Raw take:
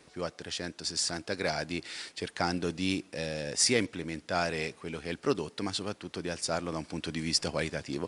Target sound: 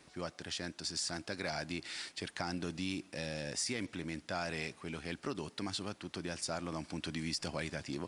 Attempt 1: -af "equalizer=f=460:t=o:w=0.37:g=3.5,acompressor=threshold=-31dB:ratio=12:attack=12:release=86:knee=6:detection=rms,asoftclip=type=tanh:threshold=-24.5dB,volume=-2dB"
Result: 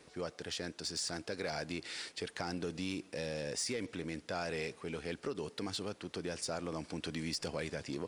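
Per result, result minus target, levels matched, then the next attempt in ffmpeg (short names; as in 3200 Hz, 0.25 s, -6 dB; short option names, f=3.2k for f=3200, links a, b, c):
soft clip: distortion +11 dB; 500 Hz band +3.5 dB
-af "equalizer=f=460:t=o:w=0.37:g=3.5,acompressor=threshold=-31dB:ratio=12:attack=12:release=86:knee=6:detection=rms,asoftclip=type=tanh:threshold=-18dB,volume=-2dB"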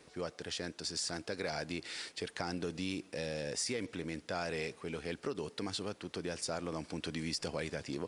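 500 Hz band +3.5 dB
-af "equalizer=f=460:t=o:w=0.37:g=-7,acompressor=threshold=-31dB:ratio=12:attack=12:release=86:knee=6:detection=rms,asoftclip=type=tanh:threshold=-18dB,volume=-2dB"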